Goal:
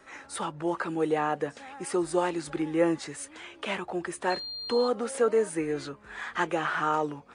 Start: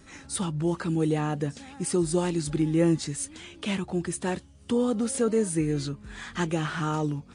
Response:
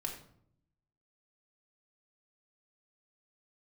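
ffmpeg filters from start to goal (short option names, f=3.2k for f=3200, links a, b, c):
-filter_complex "[0:a]acrossover=split=420 2300:gain=0.0891 1 0.224[a][b][c];[a][b][c]amix=inputs=3:normalize=0,asettb=1/sr,asplit=3[d][e][f];[d]atrim=end=4.304[g];[e]atrim=start=4.3:end=4.88,asetpts=PTS-STARTPTS,afade=t=in:d=0.004:c=qsin,afade=t=out:st=0.576:d=0.004:c=qsin,aeval=exprs='val(0)+0.00891*sin(2*PI*4200*n/s)':c=same[h];[f]atrim=start=4.876[i];[g][h]acrossfade=d=0.004:c1=hsin:c2=qsin[j];[j][i]acrossfade=d=0.004:c1=qsin:c2=hsin,volume=6dB"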